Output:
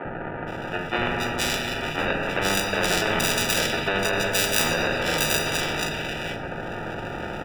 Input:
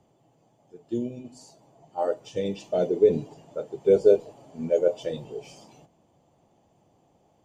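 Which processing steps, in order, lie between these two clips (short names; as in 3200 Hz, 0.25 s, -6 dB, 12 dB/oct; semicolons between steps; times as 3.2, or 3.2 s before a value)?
rattling part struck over -34 dBFS, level -20 dBFS; gate -55 dBFS, range -12 dB; in parallel at -3 dB: upward compressor, threshold -26 dBFS; on the sum: chorus 0.62 Hz, delay 17.5 ms, depth 2.4 ms; sample-and-hold 41×; polynomial smoothing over 25 samples; three bands offset in time mids, lows, highs 50/470 ms, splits 280/2200 Hz; shoebox room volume 1700 m³, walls mixed, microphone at 0.91 m; maximiser +11.5 dB; spectral compressor 4:1; gain -1 dB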